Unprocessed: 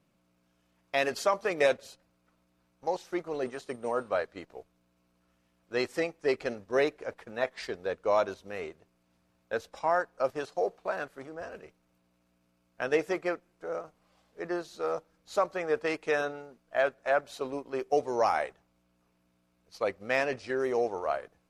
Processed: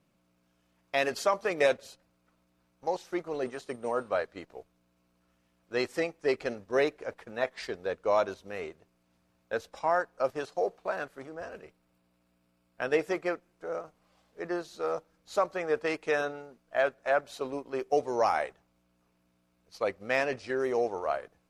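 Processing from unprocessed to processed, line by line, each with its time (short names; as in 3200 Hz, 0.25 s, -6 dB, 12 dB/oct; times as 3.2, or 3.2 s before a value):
11.62–13.05 notch 6200 Hz, Q 8.3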